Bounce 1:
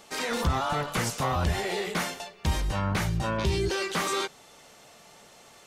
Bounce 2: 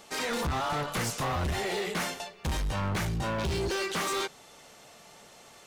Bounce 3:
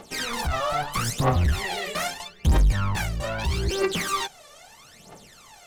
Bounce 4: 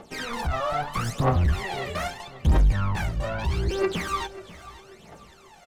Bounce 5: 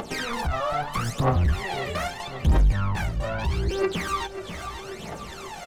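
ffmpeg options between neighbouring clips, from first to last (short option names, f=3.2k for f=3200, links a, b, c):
-af "volume=27dB,asoftclip=hard,volume=-27dB"
-af "aphaser=in_gain=1:out_gain=1:delay=1.8:decay=0.79:speed=0.78:type=triangular"
-af "highshelf=f=3.2k:g=-10.5,aecho=1:1:539|1078|1617:0.141|0.0551|0.0215"
-af "acompressor=mode=upward:threshold=-24dB:ratio=2.5"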